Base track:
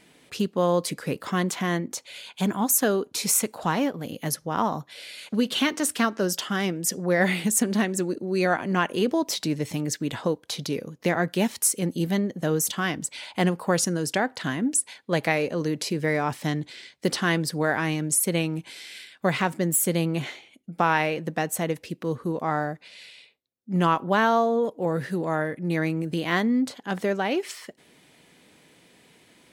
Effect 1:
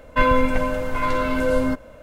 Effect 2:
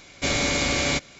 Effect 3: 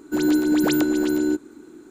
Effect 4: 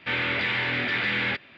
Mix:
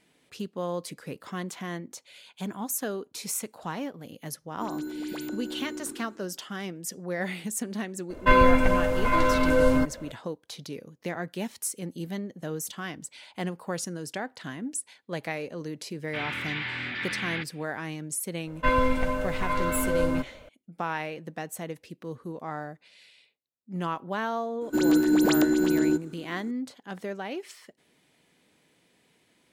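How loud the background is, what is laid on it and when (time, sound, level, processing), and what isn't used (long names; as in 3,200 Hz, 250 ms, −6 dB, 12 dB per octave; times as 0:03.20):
base track −9.5 dB
0:04.48: mix in 3 −16 dB + level that may fall only so fast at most 52 dB per second
0:08.10: mix in 1 −0.5 dB
0:16.07: mix in 4 −6.5 dB + parametric band 520 Hz −10.5 dB 0.71 octaves
0:18.47: mix in 1 −5.5 dB
0:24.61: mix in 3 −2 dB
not used: 2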